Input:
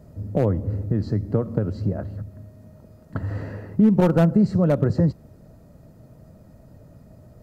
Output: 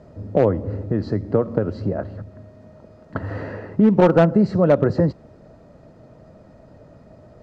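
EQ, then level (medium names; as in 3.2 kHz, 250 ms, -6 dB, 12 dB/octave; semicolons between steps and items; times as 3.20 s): distance through air 130 m; tone controls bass -10 dB, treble 0 dB; +7.5 dB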